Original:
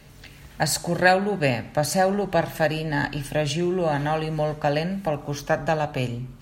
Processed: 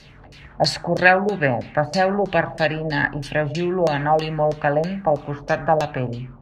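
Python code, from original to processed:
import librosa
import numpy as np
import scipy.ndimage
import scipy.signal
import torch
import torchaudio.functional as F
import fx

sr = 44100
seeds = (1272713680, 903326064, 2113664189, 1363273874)

y = fx.filter_lfo_lowpass(x, sr, shape='saw_down', hz=3.1, low_hz=530.0, high_hz=5500.0, q=2.7)
y = fx.high_shelf(y, sr, hz=9600.0, db=11.0)
y = y * 10.0 ** (1.0 / 20.0)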